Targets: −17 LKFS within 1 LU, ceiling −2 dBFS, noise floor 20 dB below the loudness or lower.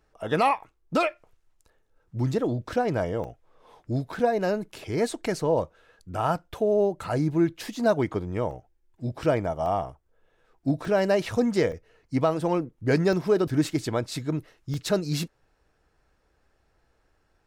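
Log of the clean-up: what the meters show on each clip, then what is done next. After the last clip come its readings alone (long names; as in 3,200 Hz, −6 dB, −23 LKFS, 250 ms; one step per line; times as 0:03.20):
number of dropouts 8; longest dropout 1.4 ms; integrated loudness −27.0 LKFS; sample peak −11.0 dBFS; target loudness −17.0 LKFS
→ repair the gap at 0:03.24/0:07.04/0:08.51/0:09.66/0:10.85/0:11.72/0:13.13/0:14.74, 1.4 ms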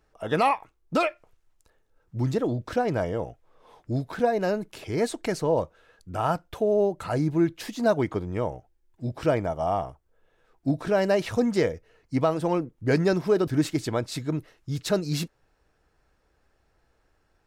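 number of dropouts 0; integrated loudness −27.0 LKFS; sample peak −11.0 dBFS; target loudness −17.0 LKFS
→ level +10 dB
brickwall limiter −2 dBFS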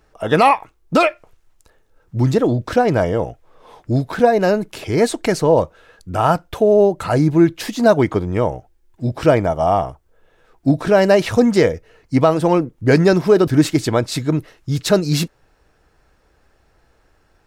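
integrated loudness −17.0 LKFS; sample peak −2.0 dBFS; background noise floor −59 dBFS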